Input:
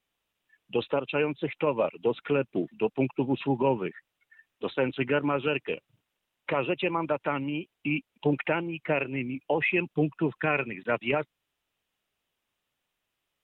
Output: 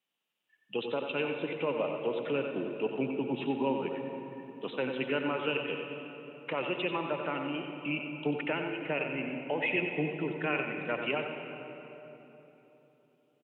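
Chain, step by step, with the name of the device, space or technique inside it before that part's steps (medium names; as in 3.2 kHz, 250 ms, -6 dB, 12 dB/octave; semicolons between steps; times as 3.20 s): PA in a hall (high-pass 140 Hz 24 dB/octave; peaking EQ 2.9 kHz +6 dB 0.3 oct; delay 92 ms -8 dB; reverberation RT60 3.4 s, pre-delay 69 ms, DRR 5.5 dB); trim -6.5 dB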